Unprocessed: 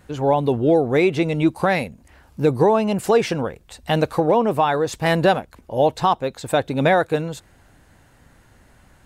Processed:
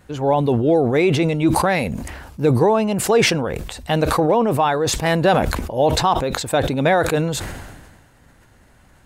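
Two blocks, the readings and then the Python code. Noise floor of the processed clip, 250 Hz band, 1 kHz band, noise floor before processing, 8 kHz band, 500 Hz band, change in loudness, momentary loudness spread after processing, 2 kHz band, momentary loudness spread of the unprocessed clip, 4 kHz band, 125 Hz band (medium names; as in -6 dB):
-52 dBFS, +1.5 dB, +1.0 dB, -54 dBFS, +11.0 dB, +1.0 dB, +1.5 dB, 10 LU, +2.0 dB, 8 LU, +5.5 dB, +3.5 dB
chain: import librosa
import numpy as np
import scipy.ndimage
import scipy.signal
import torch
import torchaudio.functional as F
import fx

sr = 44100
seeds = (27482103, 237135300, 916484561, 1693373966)

y = fx.sustainer(x, sr, db_per_s=39.0)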